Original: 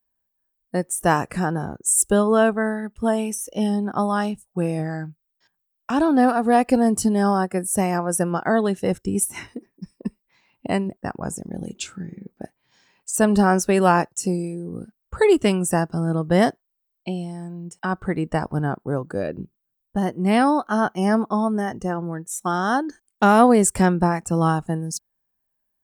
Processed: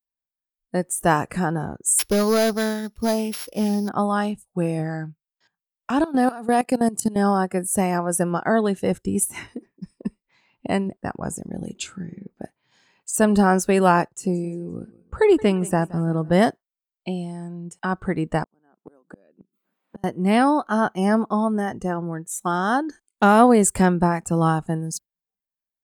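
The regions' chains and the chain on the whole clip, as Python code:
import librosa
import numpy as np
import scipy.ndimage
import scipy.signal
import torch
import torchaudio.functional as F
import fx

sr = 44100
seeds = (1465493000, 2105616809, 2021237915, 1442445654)

y = fx.chain(x, sr, fx.sample_sort(block=8),
    fx.clip_hard(threshold_db=-14.0), at=(1.99, 3.89))
y = fx.chain(y, sr, fx.highpass(hz=100.0, slope=24),
    fx.peak_eq(hz=10000.0, db=7.0, octaves=2.1),
    fx.level_steps(step_db=17), at=(6.04, 7.16))
y = fx.chain(y, sr, fx.high_shelf(hz=3300.0, db=-8.5),
    fx.echo_feedback(ms=173, feedback_pct=41, wet_db=-21), at=(14.08, 16.33))
y = fx.chain(y, sr, fx.brickwall_highpass(low_hz=170.0),
    fx.gate_flip(shuts_db=-23.0, range_db=-35),
    fx.band_squash(depth_pct=100), at=(18.43, 20.04))
y = fx.notch(y, sr, hz=5600.0, q=9.3)
y = fx.noise_reduce_blind(y, sr, reduce_db=16)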